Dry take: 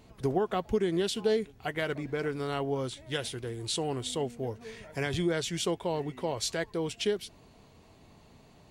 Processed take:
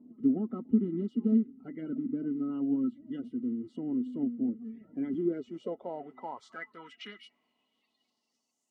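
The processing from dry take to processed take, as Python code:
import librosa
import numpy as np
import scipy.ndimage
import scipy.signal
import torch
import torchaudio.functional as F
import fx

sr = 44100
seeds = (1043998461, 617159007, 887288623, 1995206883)

y = fx.spec_quant(x, sr, step_db=30)
y = fx.filter_sweep_bandpass(y, sr, from_hz=270.0, to_hz=7100.0, start_s=4.99, end_s=8.64, q=3.2)
y = fx.small_body(y, sr, hz=(240.0, 1300.0, 2000.0, 2900.0), ring_ms=60, db=18)
y = y * librosa.db_to_amplitude(-2.5)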